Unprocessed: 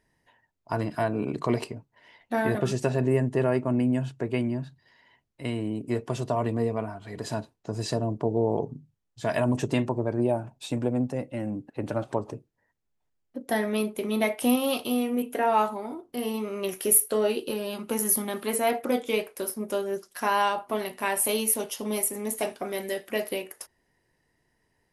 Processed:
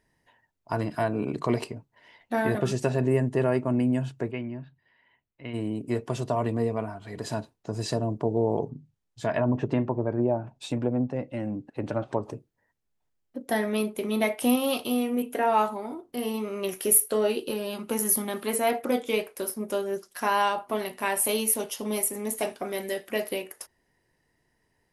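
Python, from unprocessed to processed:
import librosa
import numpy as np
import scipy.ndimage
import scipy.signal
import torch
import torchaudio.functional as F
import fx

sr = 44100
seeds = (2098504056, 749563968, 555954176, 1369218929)

y = fx.ladder_lowpass(x, sr, hz=3400.0, resonance_pct=30, at=(4.3, 5.53), fade=0.02)
y = fx.env_lowpass_down(y, sr, base_hz=1400.0, full_db=-21.0, at=(8.69, 12.22), fade=0.02)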